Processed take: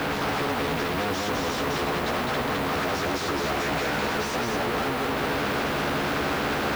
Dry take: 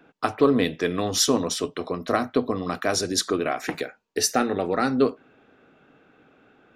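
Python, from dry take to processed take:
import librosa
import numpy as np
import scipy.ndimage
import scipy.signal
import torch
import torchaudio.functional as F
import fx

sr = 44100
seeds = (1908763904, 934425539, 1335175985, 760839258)

y = np.sign(x) * np.sqrt(np.mean(np.square(x)))
y = scipy.signal.sosfilt(scipy.signal.butter(2, 1300.0, 'lowpass', fs=sr, output='sos'), y)
y = fx.dmg_noise_colour(y, sr, seeds[0], colour='blue', level_db=-66.0)
y = scipy.signal.sosfilt(scipy.signal.butter(2, 47.0, 'highpass', fs=sr, output='sos'), y)
y = fx.doubler(y, sr, ms=14.0, db=-5.0)
y = y + 10.0 ** (-3.5 / 20.0) * np.pad(y, (int(209 * sr / 1000.0), 0))[:len(y)]
y = fx.spectral_comp(y, sr, ratio=2.0)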